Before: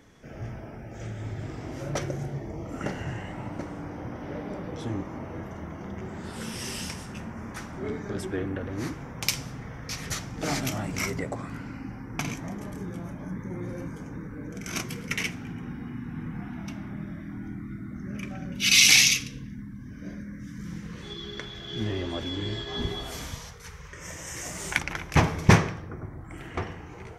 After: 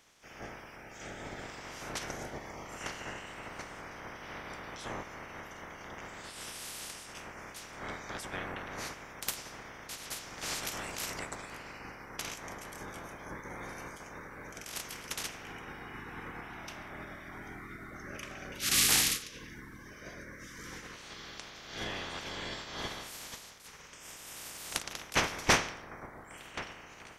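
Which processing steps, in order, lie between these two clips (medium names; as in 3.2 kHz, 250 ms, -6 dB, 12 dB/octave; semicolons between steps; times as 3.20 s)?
spectral peaks clipped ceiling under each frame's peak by 25 dB; trim -8.5 dB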